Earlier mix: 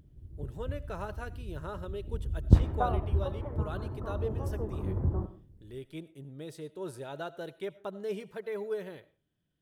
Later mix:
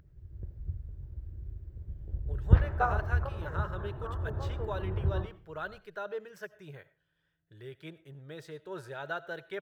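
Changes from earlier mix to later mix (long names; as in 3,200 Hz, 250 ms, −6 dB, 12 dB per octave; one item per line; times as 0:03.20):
speech: entry +1.90 s
master: add graphic EQ with 15 bands 250 Hz −12 dB, 1,600 Hz +10 dB, 10,000 Hz −11 dB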